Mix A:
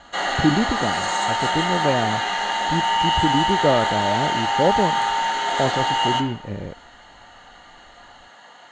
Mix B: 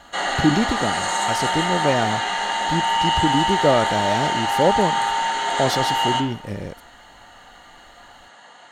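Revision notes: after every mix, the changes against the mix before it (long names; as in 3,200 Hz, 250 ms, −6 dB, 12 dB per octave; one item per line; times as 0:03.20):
speech: remove high-frequency loss of the air 400 metres
master: remove low-pass filter 7,100 Hz 24 dB per octave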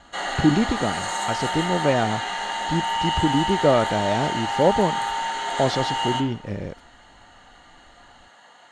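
speech: add high-frequency loss of the air 110 metres
background −4.5 dB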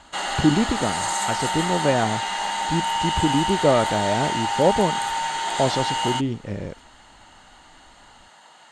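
background +10.5 dB
reverb: off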